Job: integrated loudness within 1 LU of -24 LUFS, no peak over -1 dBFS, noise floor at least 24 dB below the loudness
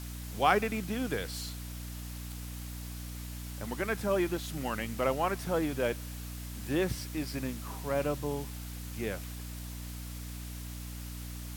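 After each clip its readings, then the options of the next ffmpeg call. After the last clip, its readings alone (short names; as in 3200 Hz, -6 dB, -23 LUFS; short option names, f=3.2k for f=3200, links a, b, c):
hum 60 Hz; harmonics up to 300 Hz; hum level -39 dBFS; noise floor -41 dBFS; noise floor target -59 dBFS; loudness -35.0 LUFS; peak -11.5 dBFS; loudness target -24.0 LUFS
-> -af "bandreject=f=60:t=h:w=6,bandreject=f=120:t=h:w=6,bandreject=f=180:t=h:w=6,bandreject=f=240:t=h:w=6,bandreject=f=300:t=h:w=6"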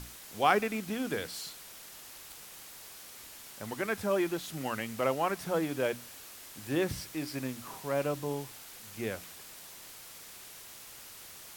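hum none; noise floor -49 dBFS; noise floor target -58 dBFS
-> -af "afftdn=nr=9:nf=-49"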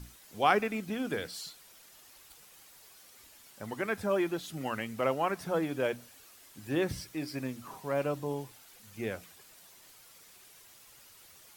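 noise floor -57 dBFS; noise floor target -58 dBFS
-> -af "afftdn=nr=6:nf=-57"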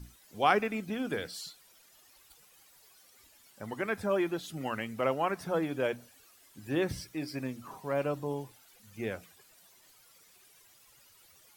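noise floor -61 dBFS; loudness -33.5 LUFS; peak -11.5 dBFS; loudness target -24.0 LUFS
-> -af "volume=9.5dB"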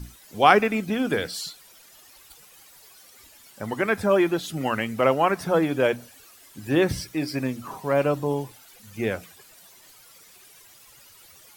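loudness -24.0 LUFS; peak -2.0 dBFS; noise floor -52 dBFS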